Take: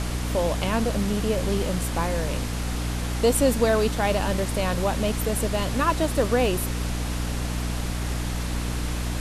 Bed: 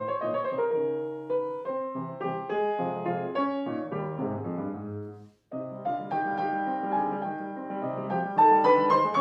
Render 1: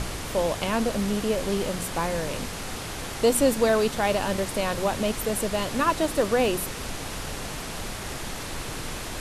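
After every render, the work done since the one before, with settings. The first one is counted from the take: de-hum 60 Hz, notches 5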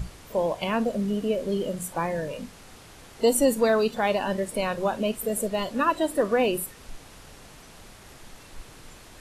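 noise print and reduce 14 dB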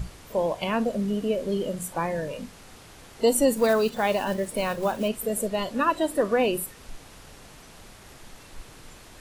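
3.57–5.10 s: block-companded coder 5-bit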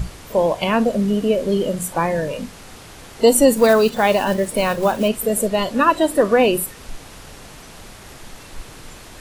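trim +8 dB

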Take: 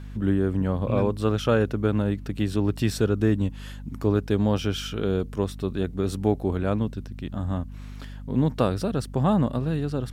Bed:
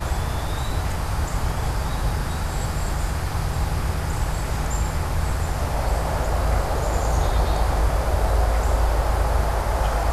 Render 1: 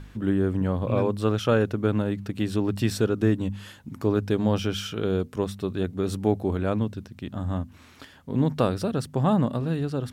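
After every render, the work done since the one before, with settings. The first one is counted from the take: de-hum 50 Hz, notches 5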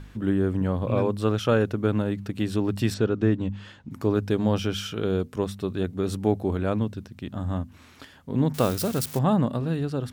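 2.94–3.91 s: distance through air 110 m; 8.54–9.19 s: zero-crossing glitches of -22.5 dBFS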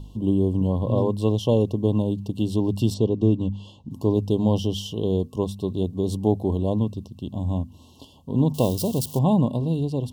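FFT band-reject 1.1–2.7 kHz; bass shelf 320 Hz +4 dB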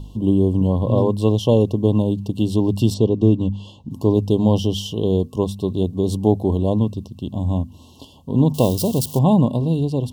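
trim +4.5 dB

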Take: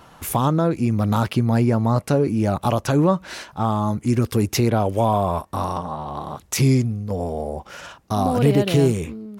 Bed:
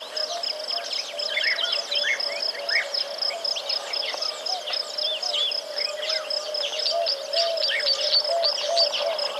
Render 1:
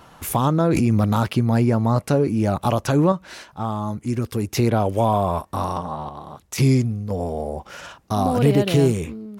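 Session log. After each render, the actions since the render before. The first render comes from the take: 0.60–1.05 s: level flattener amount 100%; 3.12–4.57 s: gain -4.5 dB; 6.09–6.58 s: gain -6.5 dB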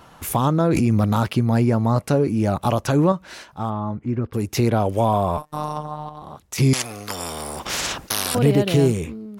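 3.69–4.33 s: low-pass 2.6 kHz -> 1.5 kHz; 5.37–6.22 s: robot voice 151 Hz; 6.73–8.35 s: spectrum-flattening compressor 10:1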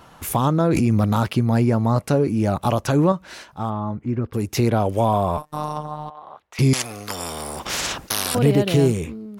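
6.10–6.59 s: three-band isolator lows -20 dB, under 460 Hz, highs -21 dB, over 3.3 kHz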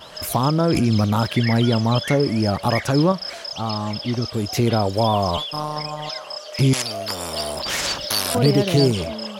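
add bed -5.5 dB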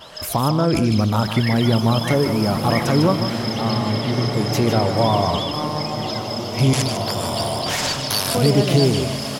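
delay 152 ms -9 dB; swelling reverb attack 2340 ms, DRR 5 dB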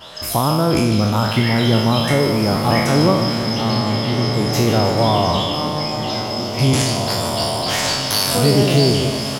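spectral sustain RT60 0.83 s; delay 308 ms -14.5 dB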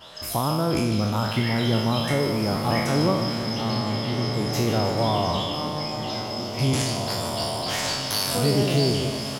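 trim -7 dB

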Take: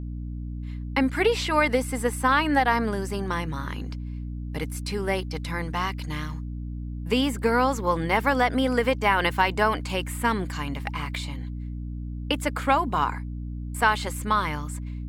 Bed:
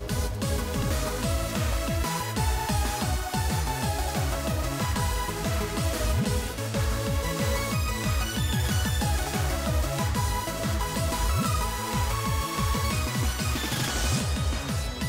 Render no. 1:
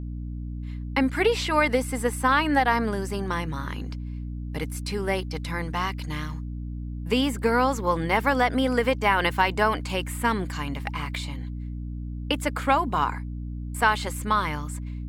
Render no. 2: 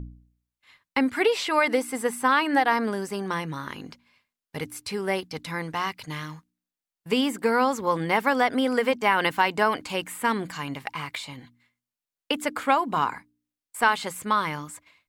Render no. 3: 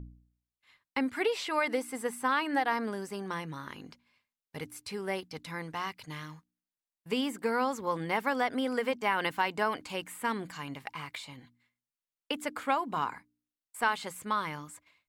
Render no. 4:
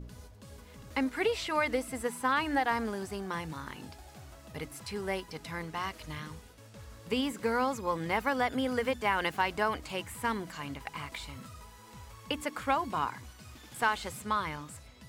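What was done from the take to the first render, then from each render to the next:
no audible change
de-hum 60 Hz, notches 5
trim -7.5 dB
add bed -22.5 dB

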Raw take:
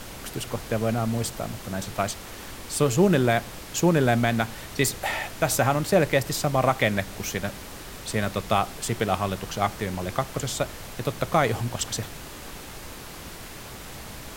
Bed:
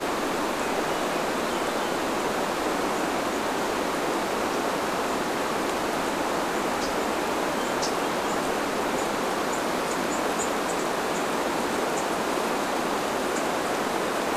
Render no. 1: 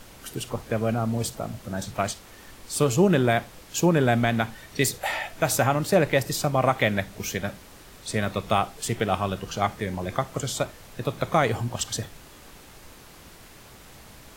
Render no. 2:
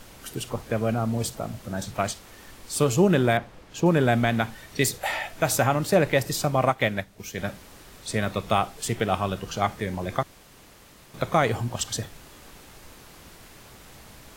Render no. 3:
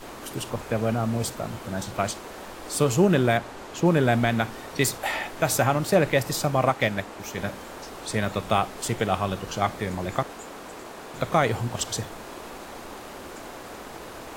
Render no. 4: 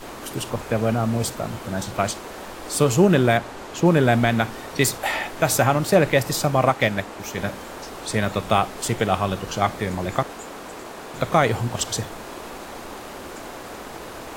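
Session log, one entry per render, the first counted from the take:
noise print and reduce 8 dB
3.37–3.86 s: low-pass 1.9 kHz 6 dB/octave; 6.65–7.38 s: upward expansion, over -40 dBFS; 10.23–11.14 s: room tone
add bed -14 dB
trim +3.5 dB

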